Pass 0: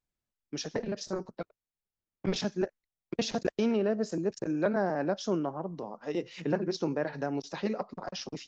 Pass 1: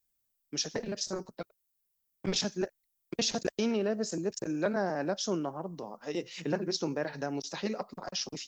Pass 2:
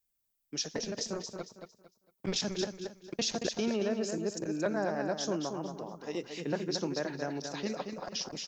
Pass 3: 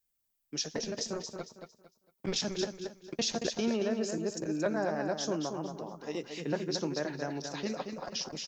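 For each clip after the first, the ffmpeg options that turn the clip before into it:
-af "aemphasis=mode=production:type=75fm,volume=0.841"
-af "aecho=1:1:227|454|681|908:0.473|0.137|0.0398|0.0115,volume=0.794"
-filter_complex "[0:a]asplit=2[s0][s1];[s1]adelay=13,volume=0.211[s2];[s0][s2]amix=inputs=2:normalize=0"

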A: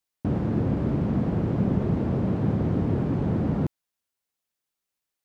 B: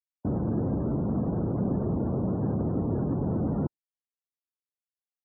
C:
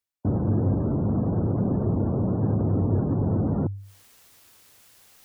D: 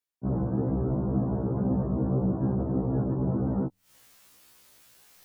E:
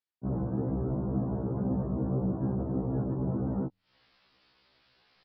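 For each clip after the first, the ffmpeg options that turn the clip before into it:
-filter_complex "[0:a]afftdn=nr=34:nf=-40,acrossover=split=230[s0][s1];[s0]alimiter=limit=0.0668:level=0:latency=1:release=33[s2];[s2][s1]amix=inputs=2:normalize=0,volume=0.841"
-af "equalizer=f=99:t=o:w=0.23:g=11,areverse,acompressor=mode=upward:threshold=0.0447:ratio=2.5,areverse,volume=1.33"
-af "afftfilt=real='re*1.73*eq(mod(b,3),0)':imag='im*1.73*eq(mod(b,3),0)':win_size=2048:overlap=0.75"
-af "aresample=11025,aresample=44100,volume=0.668"

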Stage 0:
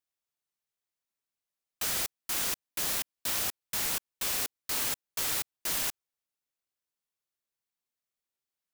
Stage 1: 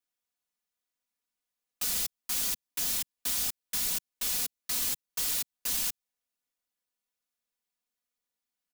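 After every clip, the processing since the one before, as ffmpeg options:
-filter_complex "[0:a]acrossover=split=210|3000[s0][s1][s2];[s1]acompressor=threshold=0.00398:ratio=4[s3];[s0][s3][s2]amix=inputs=3:normalize=0,aecho=1:1:4.1:0.97,volume=0.841"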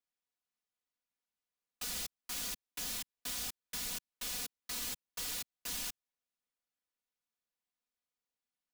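-af "highshelf=f=6700:g=-8,volume=0.631"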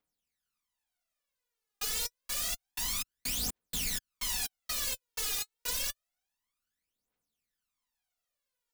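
-af "aphaser=in_gain=1:out_gain=1:delay=2.5:decay=0.75:speed=0.28:type=triangular,volume=1.26"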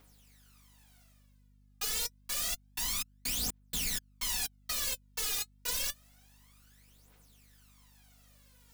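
-af "areverse,acompressor=mode=upward:threshold=0.00501:ratio=2.5,areverse,aeval=exprs='val(0)+0.000794*(sin(2*PI*50*n/s)+sin(2*PI*2*50*n/s)/2+sin(2*PI*3*50*n/s)/3+sin(2*PI*4*50*n/s)/4+sin(2*PI*5*50*n/s)/5)':c=same"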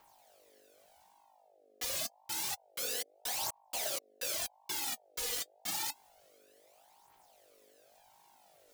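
-af "aeval=exprs='val(0)*sin(2*PI*680*n/s+680*0.3/0.85*sin(2*PI*0.85*n/s))':c=same"

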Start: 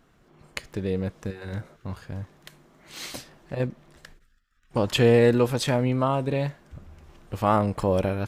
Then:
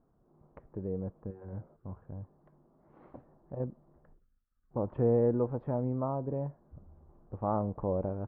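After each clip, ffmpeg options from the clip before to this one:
-af "lowpass=f=1000:w=0.5412,lowpass=f=1000:w=1.3066,volume=0.376"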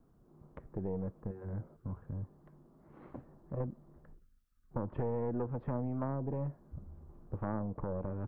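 -filter_complex "[0:a]equalizer=f=700:w=0.96:g=-6.5,acrossover=split=260|700[s0][s1][s2];[s0]acompressor=threshold=0.00891:ratio=4[s3];[s1]acompressor=threshold=0.00794:ratio=4[s4];[s2]acompressor=threshold=0.00224:ratio=4[s5];[s3][s4][s5]amix=inputs=3:normalize=0,aeval=exprs='0.0473*(cos(1*acos(clip(val(0)/0.0473,-1,1)))-cos(1*PI/2))+0.0188*(cos(2*acos(clip(val(0)/0.0473,-1,1)))-cos(2*PI/2))':c=same,volume=1.88"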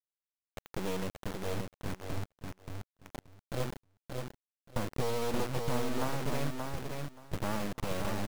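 -filter_complex "[0:a]acrusher=bits=4:dc=4:mix=0:aa=0.000001,asplit=2[s0][s1];[s1]aecho=0:1:578|1156|1734:0.596|0.101|0.0172[s2];[s0][s2]amix=inputs=2:normalize=0,volume=1.68"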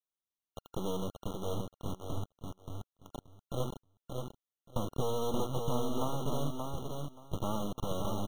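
-af "afftfilt=real='re*eq(mod(floor(b*sr/1024/1400),2),0)':imag='im*eq(mod(floor(b*sr/1024/1400),2),0)':win_size=1024:overlap=0.75"

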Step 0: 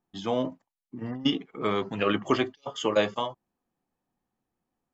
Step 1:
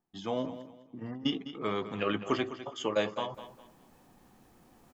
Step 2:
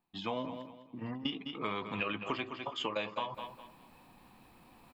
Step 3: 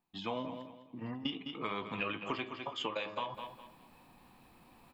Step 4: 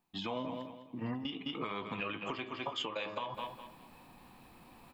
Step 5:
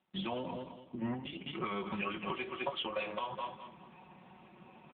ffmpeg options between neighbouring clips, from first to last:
-af "areverse,acompressor=mode=upward:threshold=0.0251:ratio=2.5,areverse,aecho=1:1:205|410|615:0.224|0.0649|0.0188,volume=0.531"
-af "equalizer=f=400:t=o:w=0.33:g=-4,equalizer=f=1000:t=o:w=0.33:g=8,equalizer=f=2500:t=o:w=0.33:g=11,equalizer=f=4000:t=o:w=0.33:g=7,equalizer=f=6300:t=o:w=0.33:g=-11,acompressor=threshold=0.0251:ratio=6"
-af "bandreject=f=104.6:t=h:w=4,bandreject=f=209.2:t=h:w=4,bandreject=f=313.8:t=h:w=4,bandreject=f=418.4:t=h:w=4,bandreject=f=523:t=h:w=4,bandreject=f=627.6:t=h:w=4,bandreject=f=732.2:t=h:w=4,bandreject=f=836.8:t=h:w=4,bandreject=f=941.4:t=h:w=4,bandreject=f=1046:t=h:w=4,bandreject=f=1150.6:t=h:w=4,bandreject=f=1255.2:t=h:w=4,bandreject=f=1359.8:t=h:w=4,bandreject=f=1464.4:t=h:w=4,bandreject=f=1569:t=h:w=4,bandreject=f=1673.6:t=h:w=4,bandreject=f=1778.2:t=h:w=4,bandreject=f=1882.8:t=h:w=4,bandreject=f=1987.4:t=h:w=4,bandreject=f=2092:t=h:w=4,bandreject=f=2196.6:t=h:w=4,bandreject=f=2301.2:t=h:w=4,bandreject=f=2405.8:t=h:w=4,bandreject=f=2510.4:t=h:w=4,bandreject=f=2615:t=h:w=4,bandreject=f=2719.6:t=h:w=4,bandreject=f=2824.2:t=h:w=4,bandreject=f=2928.8:t=h:w=4,bandreject=f=3033.4:t=h:w=4,bandreject=f=3138:t=h:w=4,bandreject=f=3242.6:t=h:w=4,bandreject=f=3347.2:t=h:w=4,bandreject=f=3451.8:t=h:w=4,bandreject=f=3556.4:t=h:w=4,bandreject=f=3661:t=h:w=4,bandreject=f=3765.6:t=h:w=4,bandreject=f=3870.2:t=h:w=4,bandreject=f=3974.8:t=h:w=4,bandreject=f=4079.4:t=h:w=4,bandreject=f=4184:t=h:w=4,volume=0.891"
-af "alimiter=level_in=2:limit=0.0631:level=0:latency=1:release=207,volume=0.501,volume=1.5"
-af "aecho=1:1:5.4:0.86,volume=1.12" -ar 8000 -c:a libopencore_amrnb -b:a 6700

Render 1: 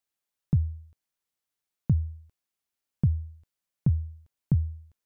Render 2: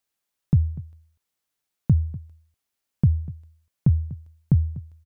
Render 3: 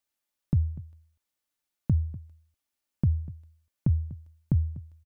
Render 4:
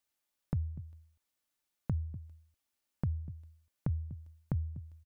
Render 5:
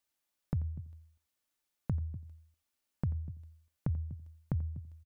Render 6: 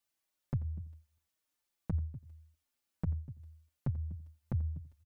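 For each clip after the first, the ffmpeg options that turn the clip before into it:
-filter_complex "[0:a]asplit=2[s0][s1];[s1]adelay=244.9,volume=0.126,highshelf=f=4000:g=-5.51[s2];[s0][s2]amix=inputs=2:normalize=0,volume=1.78"
-af "aecho=1:1:3.4:0.34,volume=0.631"
-af "acompressor=threshold=0.0126:ratio=2"
-af "aecho=1:1:87:0.133"
-filter_complex "[0:a]asplit=2[s0][s1];[s1]adelay=5.3,afreqshift=-1.8[s2];[s0][s2]amix=inputs=2:normalize=1,volume=1.26"

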